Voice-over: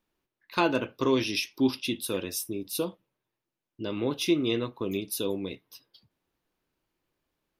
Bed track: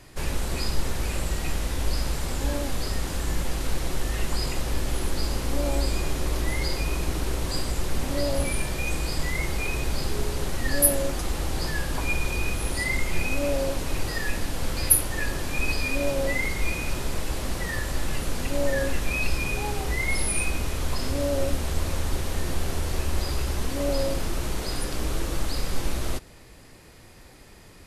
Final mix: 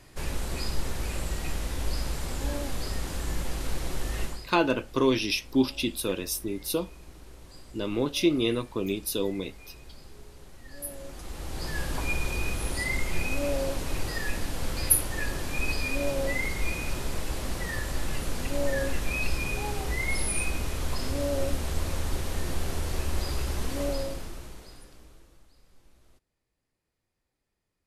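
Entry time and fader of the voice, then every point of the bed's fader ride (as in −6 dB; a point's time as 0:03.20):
3.95 s, +1.5 dB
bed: 0:04.24 −4 dB
0:04.50 −21 dB
0:10.68 −21 dB
0:11.82 −3 dB
0:23.83 −3 dB
0:25.51 −33 dB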